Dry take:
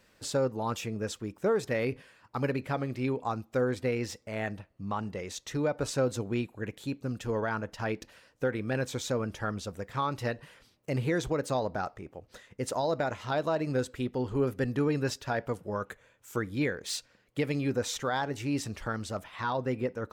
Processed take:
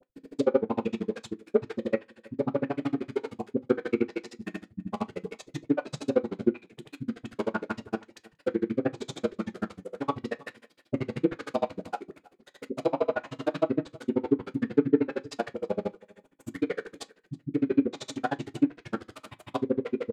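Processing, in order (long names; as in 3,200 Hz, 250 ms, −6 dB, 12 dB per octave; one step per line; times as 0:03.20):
in parallel at −7 dB: sample-rate reduction 1,800 Hz, jitter 20%
on the sum: harmonic and percussive parts rebalanced percussive −10 dB
low shelf with overshoot 160 Hz −13 dB, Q 1.5
all-pass dispersion highs, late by 97 ms, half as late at 350 Hz
granular cloud 40 ms, grains 13 per second, spray 100 ms
parametric band 5,700 Hz −4.5 dB 0.34 octaves
single-tap delay 322 ms −23.5 dB
treble cut that deepens with the level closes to 1,900 Hz, closed at −29.5 dBFS
on a send at −9 dB: convolution reverb RT60 0.20 s, pre-delay 3 ms
on the sum: level +8.5 dB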